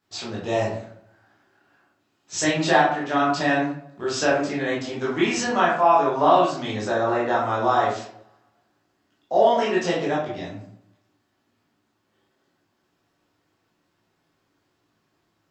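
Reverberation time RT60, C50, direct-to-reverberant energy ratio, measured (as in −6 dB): 0.65 s, 3.0 dB, −7.5 dB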